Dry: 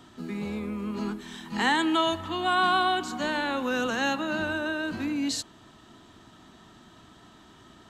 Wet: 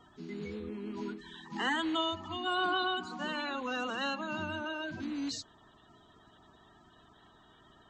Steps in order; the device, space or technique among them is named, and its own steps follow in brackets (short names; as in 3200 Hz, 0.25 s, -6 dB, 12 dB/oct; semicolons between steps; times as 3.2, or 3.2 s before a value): clip after many re-uploads (LPF 6900 Hz 24 dB/oct; bin magnitudes rounded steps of 30 dB); gain -7 dB